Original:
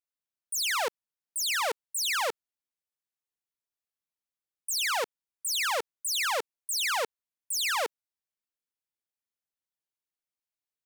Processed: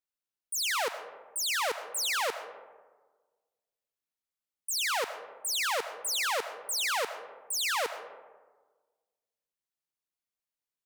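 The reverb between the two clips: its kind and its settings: digital reverb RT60 1.4 s, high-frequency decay 0.4×, pre-delay 60 ms, DRR 10 dB; gain -1.5 dB

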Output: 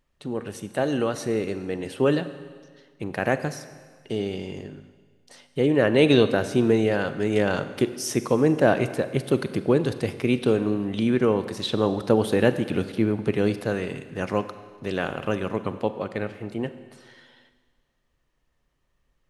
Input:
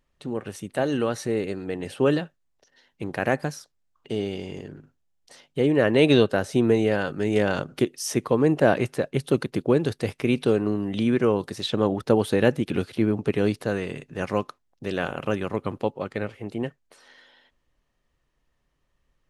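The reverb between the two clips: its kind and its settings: Schroeder reverb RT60 1.6 s, combs from 32 ms, DRR 11.5 dB

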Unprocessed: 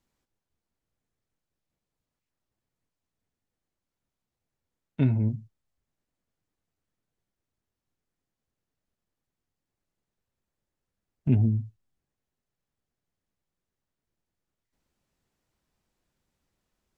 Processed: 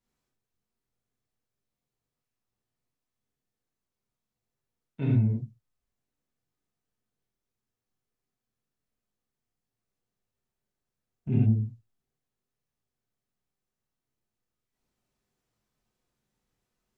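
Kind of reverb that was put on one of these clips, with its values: non-linear reverb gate 0.13 s flat, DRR -6.5 dB; gain -9.5 dB

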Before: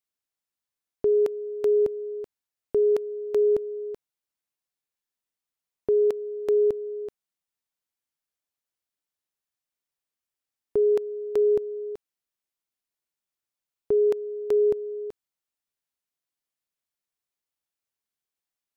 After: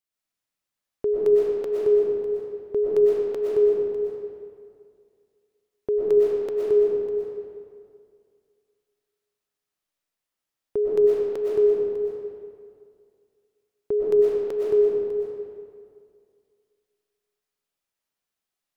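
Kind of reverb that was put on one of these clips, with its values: digital reverb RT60 2.2 s, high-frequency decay 0.65×, pre-delay 80 ms, DRR -6.5 dB; gain -2 dB

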